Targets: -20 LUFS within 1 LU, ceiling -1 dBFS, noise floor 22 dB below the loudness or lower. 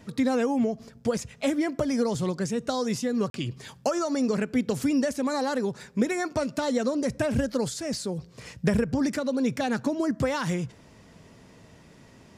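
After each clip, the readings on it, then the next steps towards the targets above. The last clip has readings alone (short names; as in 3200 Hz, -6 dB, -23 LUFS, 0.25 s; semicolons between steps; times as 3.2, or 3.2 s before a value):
dropouts 1; longest dropout 42 ms; loudness -27.5 LUFS; peak -11.0 dBFS; loudness target -20.0 LUFS
-> interpolate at 3.3, 42 ms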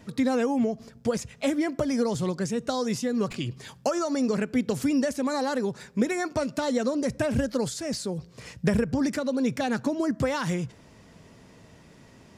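dropouts 0; loudness -27.5 LUFS; peak -11.0 dBFS; loudness target -20.0 LUFS
-> gain +7.5 dB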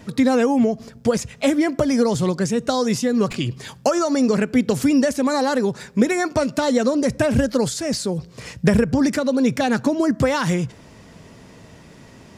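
loudness -20.0 LUFS; peak -3.5 dBFS; noise floor -45 dBFS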